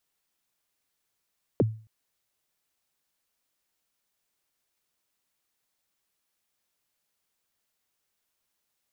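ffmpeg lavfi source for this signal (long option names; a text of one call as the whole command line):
ffmpeg -f lavfi -i "aevalsrc='0.168*pow(10,-3*t/0.39)*sin(2*PI*(570*0.028/log(110/570)*(exp(log(110/570)*min(t,0.028)/0.028)-1)+110*max(t-0.028,0)))':duration=0.27:sample_rate=44100" out.wav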